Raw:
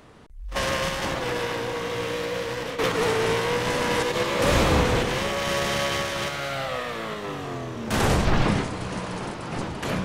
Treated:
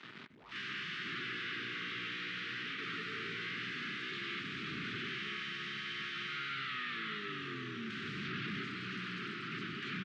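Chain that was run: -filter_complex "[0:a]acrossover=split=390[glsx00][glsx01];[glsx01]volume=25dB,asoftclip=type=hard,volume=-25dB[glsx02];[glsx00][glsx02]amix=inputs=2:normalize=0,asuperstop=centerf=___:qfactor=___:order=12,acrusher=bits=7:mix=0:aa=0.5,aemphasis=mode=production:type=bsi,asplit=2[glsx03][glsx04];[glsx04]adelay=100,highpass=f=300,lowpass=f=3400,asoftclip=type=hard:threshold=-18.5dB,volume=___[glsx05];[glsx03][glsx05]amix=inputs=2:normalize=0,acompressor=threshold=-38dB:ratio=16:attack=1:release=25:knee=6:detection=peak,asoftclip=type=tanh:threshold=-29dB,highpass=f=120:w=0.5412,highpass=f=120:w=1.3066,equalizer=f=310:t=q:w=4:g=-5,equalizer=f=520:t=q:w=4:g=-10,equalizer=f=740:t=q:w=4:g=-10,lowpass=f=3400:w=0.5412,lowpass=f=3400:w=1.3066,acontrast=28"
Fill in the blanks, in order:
710, 0.85, -19dB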